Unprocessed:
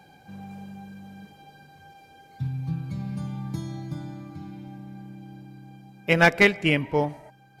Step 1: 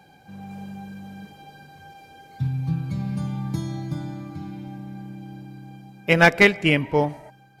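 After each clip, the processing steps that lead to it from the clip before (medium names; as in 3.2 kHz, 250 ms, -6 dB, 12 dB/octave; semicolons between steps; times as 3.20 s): level rider gain up to 4.5 dB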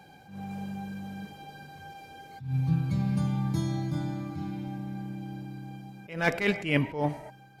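attacks held to a fixed rise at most 120 dB/s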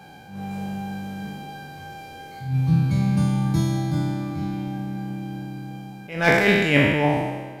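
spectral sustain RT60 1.45 s; trim +5.5 dB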